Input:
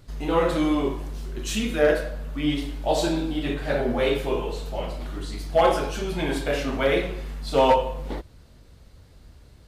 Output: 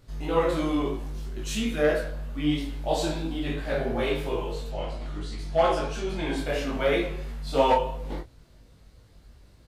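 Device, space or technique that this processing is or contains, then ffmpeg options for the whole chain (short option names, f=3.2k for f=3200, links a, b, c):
double-tracked vocal: -filter_complex "[0:a]asettb=1/sr,asplit=3[a][b][c];[a]atrim=end=4.684[d];[b]atrim=start=4.68:end=6.38,asetpts=PTS-STARTPTS,afade=t=in:d=0.004:c=qsin,afade=t=out:st=1.696:d=0.004:c=qsin,lowpass=8.6k[e];[c]atrim=start=6.376[f];[d][e]acrossfade=d=0.004:c1=hsin:c2=qsin[g];[g][f]acrossfade=d=0.004:c1=qsin:c2=hsin,asplit=2[h][i];[i]adelay=26,volume=-6.5dB[j];[h][j]amix=inputs=2:normalize=0,flanger=delay=17.5:depth=2.9:speed=3,volume=-1dB"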